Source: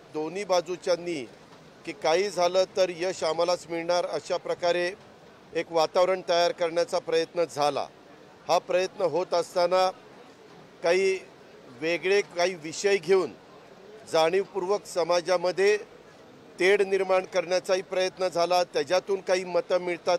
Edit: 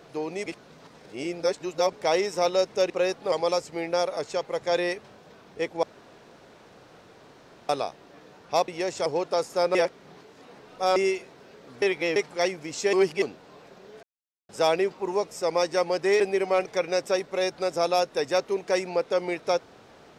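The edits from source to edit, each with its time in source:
0.46–1.93 s: reverse
2.90–3.28 s: swap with 8.64–9.06 s
5.79–7.65 s: room tone
9.75–10.96 s: reverse
11.82–12.16 s: reverse
12.93–13.22 s: reverse
14.03 s: insert silence 0.46 s
15.74–16.79 s: delete

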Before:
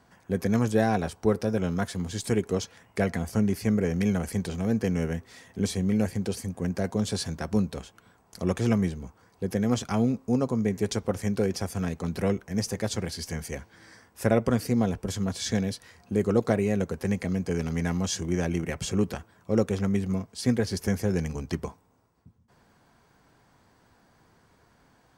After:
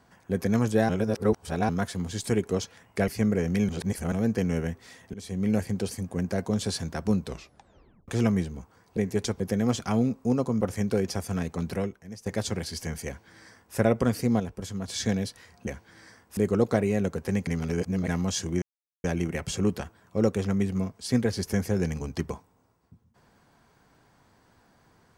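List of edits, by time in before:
0.89–1.69 s: reverse
3.08–3.54 s: delete
4.15–4.58 s: reverse
5.60–5.97 s: fade in, from -21.5 dB
7.71 s: tape stop 0.83 s
10.64–11.07 s: move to 9.43 s
12.13–12.72 s: fade out quadratic, to -15.5 dB
13.52–14.22 s: copy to 16.13 s
14.86–15.34 s: gain -5 dB
17.23–17.84 s: reverse
18.38 s: insert silence 0.42 s

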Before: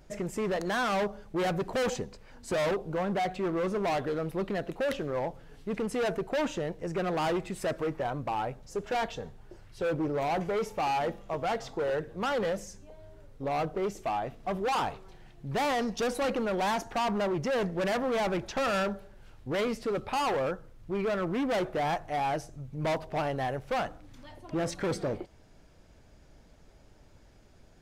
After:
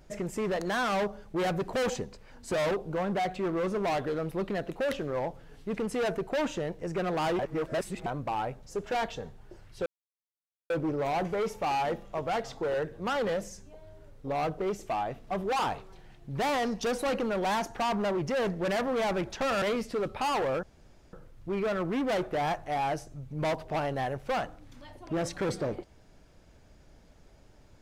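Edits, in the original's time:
7.39–8.06 s: reverse
9.86 s: insert silence 0.84 s
18.78–19.54 s: delete
20.55 s: insert room tone 0.50 s

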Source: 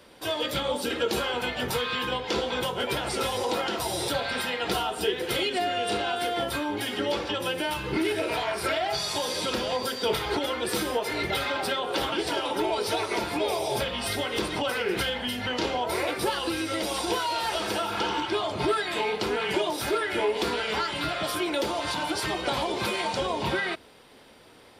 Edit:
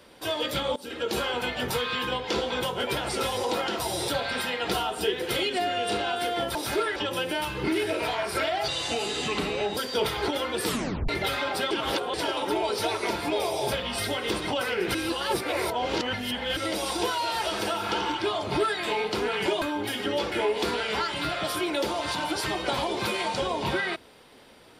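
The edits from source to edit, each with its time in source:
0.76–1.20 s: fade in, from -18.5 dB
6.55–7.25 s: swap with 19.70–20.11 s
8.97–9.85 s: speed 81%
10.74 s: tape stop 0.43 s
11.79–12.22 s: reverse
15.03–16.65 s: reverse

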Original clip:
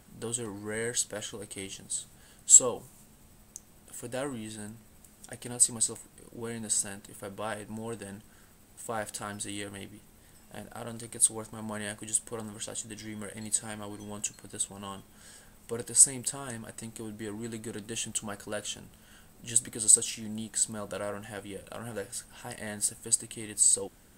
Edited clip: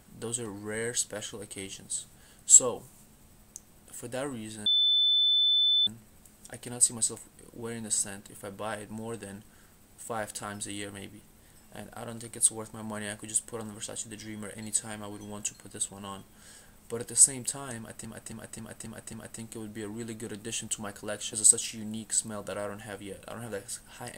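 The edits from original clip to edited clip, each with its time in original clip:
4.66 s: add tone 3.52 kHz -21 dBFS 1.21 s
16.57–16.84 s: loop, 6 plays
18.77–19.77 s: delete

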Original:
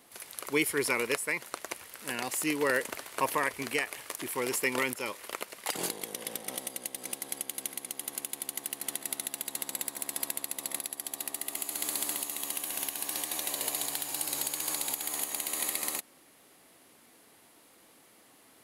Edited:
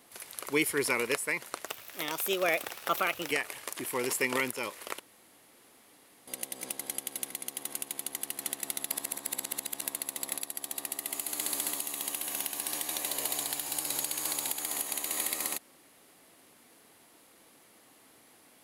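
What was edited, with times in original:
1.67–3.73 s: speed 126%
5.42–6.70 s: room tone
9.33–10.24 s: reverse

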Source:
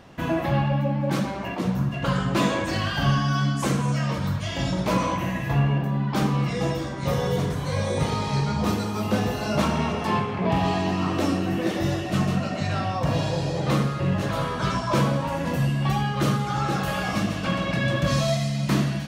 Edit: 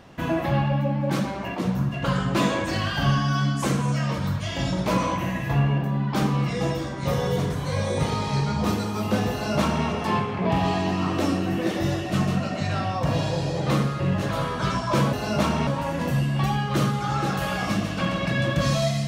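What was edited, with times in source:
9.32–9.86 s: copy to 15.13 s

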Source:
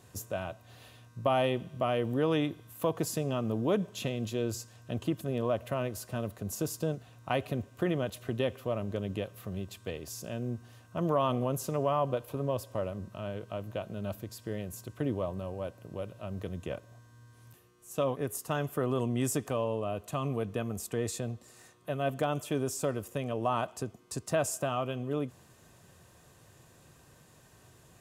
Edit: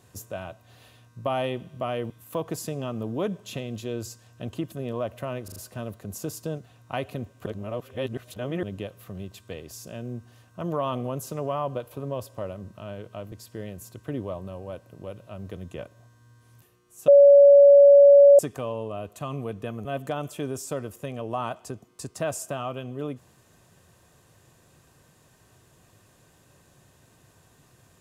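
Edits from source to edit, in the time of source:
2.10–2.59 s: delete
5.93 s: stutter 0.04 s, 4 plays
7.83–9.00 s: reverse
13.69–14.24 s: delete
18.00–19.31 s: bleep 566 Hz -9 dBFS
20.77–21.97 s: delete

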